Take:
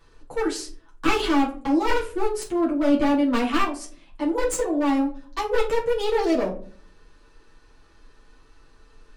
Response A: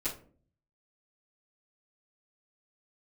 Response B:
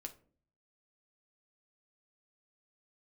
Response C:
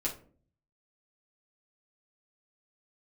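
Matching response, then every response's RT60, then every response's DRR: C; 0.45 s, 0.45 s, 0.45 s; -15.0 dB, 4.0 dB, -5.0 dB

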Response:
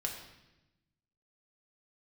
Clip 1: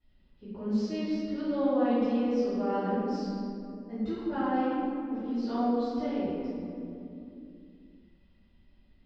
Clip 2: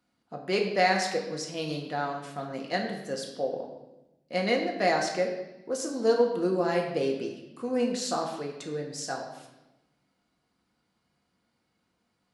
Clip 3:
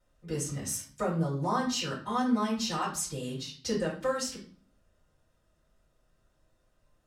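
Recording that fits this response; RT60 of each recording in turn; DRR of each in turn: 2; 2.8 s, 0.95 s, 0.45 s; -17.5 dB, 0.5 dB, -6.5 dB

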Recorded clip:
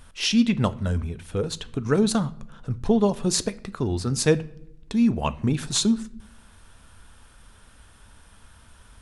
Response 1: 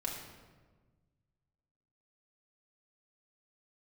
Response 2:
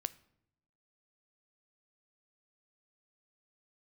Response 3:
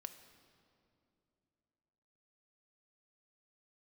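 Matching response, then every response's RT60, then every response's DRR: 2; 1.4 s, 0.80 s, 2.8 s; -2.5 dB, 15.0 dB, 8.5 dB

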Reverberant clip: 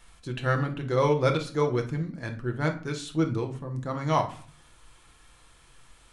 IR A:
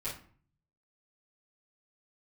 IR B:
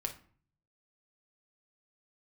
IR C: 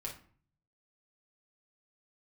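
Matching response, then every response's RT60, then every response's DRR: B; 0.50 s, 0.50 s, 0.50 s; -12.0 dB, 3.5 dB, -2.5 dB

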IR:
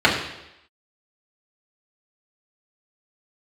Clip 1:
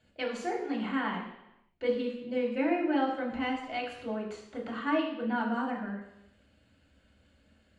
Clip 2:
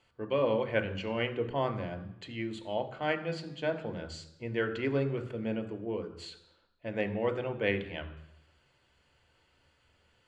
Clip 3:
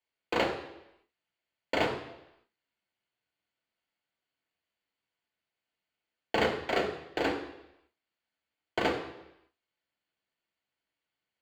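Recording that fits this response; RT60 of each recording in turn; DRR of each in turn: 1; 0.85 s, 0.85 s, 0.85 s; -5.5 dB, 6.5 dB, 0.5 dB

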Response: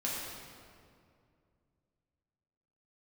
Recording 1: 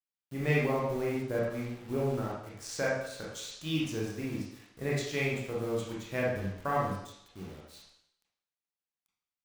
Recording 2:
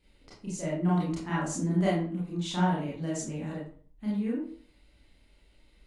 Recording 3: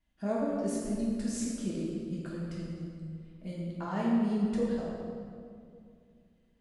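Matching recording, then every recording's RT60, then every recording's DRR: 3; 0.70 s, 0.45 s, 2.3 s; -5.5 dB, -7.0 dB, -6.5 dB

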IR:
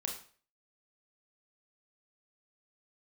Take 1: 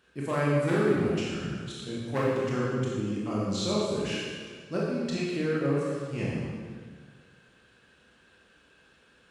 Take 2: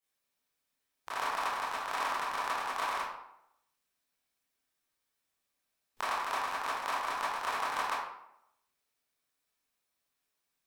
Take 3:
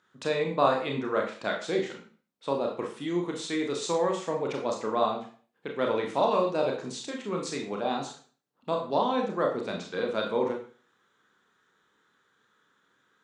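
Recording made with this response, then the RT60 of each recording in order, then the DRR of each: 3; 1.8 s, 0.80 s, 0.45 s; -6.0 dB, -10.5 dB, 0.5 dB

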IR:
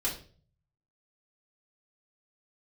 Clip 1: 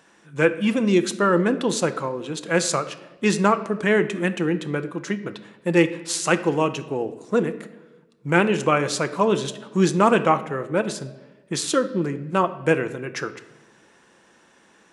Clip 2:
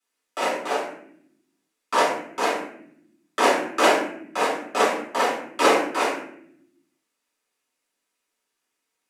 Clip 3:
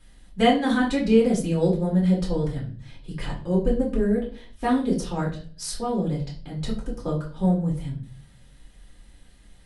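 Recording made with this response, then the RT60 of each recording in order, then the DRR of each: 3; 1.2 s, 0.70 s, 0.45 s; 9.5 dB, -11.0 dB, -5.0 dB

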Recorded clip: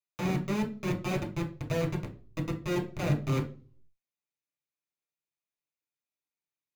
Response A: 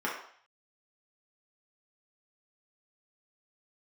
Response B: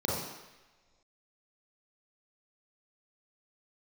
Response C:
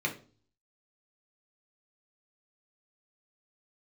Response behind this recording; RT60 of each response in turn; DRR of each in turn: C; 0.55 s, no single decay rate, 0.40 s; -5.5 dB, -5.5 dB, 0.0 dB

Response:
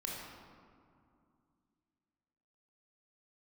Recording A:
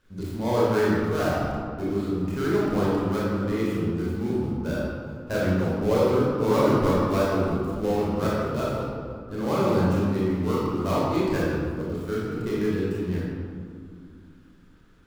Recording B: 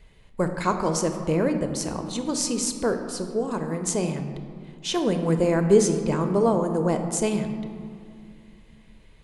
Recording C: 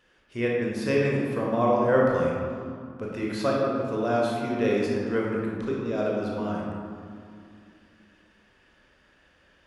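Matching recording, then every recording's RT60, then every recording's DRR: C; 2.4 s, 2.4 s, 2.4 s; -7.5 dB, 6.0 dB, -3.5 dB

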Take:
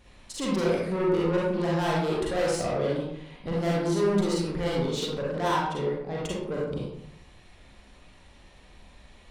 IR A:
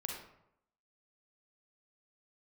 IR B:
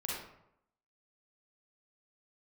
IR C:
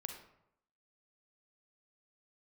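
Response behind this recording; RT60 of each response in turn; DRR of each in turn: B; 0.80 s, 0.80 s, 0.80 s; 0.0 dB, -5.0 dB, 4.0 dB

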